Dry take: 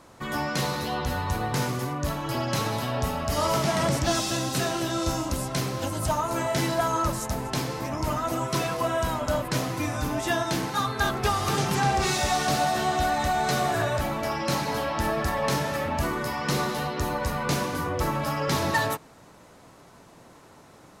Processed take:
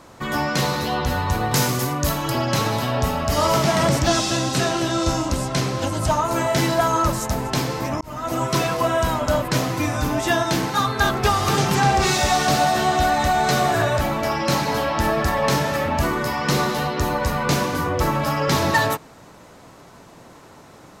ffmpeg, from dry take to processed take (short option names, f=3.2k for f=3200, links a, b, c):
-filter_complex "[0:a]asettb=1/sr,asplit=3[a][b][c];[a]atrim=end=1.514[d];[b]atrim=start=1.51:end=2.3,asetpts=PTS-STARTPTS,afade=t=in:d=0.004:c=qsin,afade=t=out:st=0.786:d=0.004:c=qsin,highshelf=f=4.7k:g=10.5[e];[c]atrim=start=2.296[f];[d][e]acrossfade=d=0.004:c1=hsin:c2=qsin[g];[g][f]acrossfade=d=0.004:c1=qsin:c2=hsin,asettb=1/sr,asplit=3[h][i][j];[h]atrim=end=4.084[k];[i]atrim=start=4.08:end=6.25,asetpts=PTS-STARTPTS,afade=t=in:d=0.004:c=qsin,afade=t=out:st=2.166:d=0.004:c=qsin,lowpass=9.8k[l];[j]atrim=start=6.246[m];[k][l]acrossfade=d=0.004:c1=hsin:c2=qsin[n];[n][m]acrossfade=d=0.004:c1=qsin:c2=hsin,asplit=2[o][p];[o]atrim=end=8.01,asetpts=PTS-STARTPTS,afade=t=out:st=8.006:d=0.004:c=hsin[q];[p]atrim=start=8.01,asetpts=PTS-STARTPTS,afade=t=in:d=0.41[r];[q][r]concat=n=2:v=0:a=1,equalizer=f=10k:w=3.2:g=-4.5,volume=6dB"